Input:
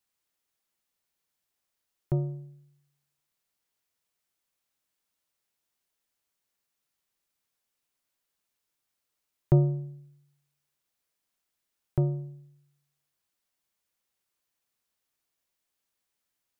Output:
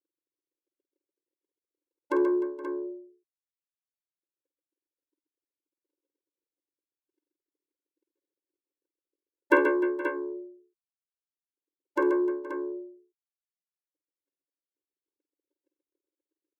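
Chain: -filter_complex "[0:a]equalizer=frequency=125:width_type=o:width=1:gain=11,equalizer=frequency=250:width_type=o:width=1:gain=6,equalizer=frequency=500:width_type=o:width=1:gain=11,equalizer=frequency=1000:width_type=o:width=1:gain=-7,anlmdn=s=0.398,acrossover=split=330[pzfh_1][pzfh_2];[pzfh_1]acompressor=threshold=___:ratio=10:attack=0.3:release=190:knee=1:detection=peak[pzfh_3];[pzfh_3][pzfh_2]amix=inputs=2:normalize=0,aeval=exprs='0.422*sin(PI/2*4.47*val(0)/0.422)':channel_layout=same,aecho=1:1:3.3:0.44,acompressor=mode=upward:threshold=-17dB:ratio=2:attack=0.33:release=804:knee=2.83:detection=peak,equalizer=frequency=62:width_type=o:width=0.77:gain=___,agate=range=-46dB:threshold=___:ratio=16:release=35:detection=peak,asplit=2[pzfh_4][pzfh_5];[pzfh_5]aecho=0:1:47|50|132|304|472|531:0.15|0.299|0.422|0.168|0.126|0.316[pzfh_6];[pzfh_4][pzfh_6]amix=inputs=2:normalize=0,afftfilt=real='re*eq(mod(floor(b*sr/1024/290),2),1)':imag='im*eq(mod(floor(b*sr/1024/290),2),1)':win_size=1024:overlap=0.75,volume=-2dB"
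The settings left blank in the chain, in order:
-20dB, -2.5, -53dB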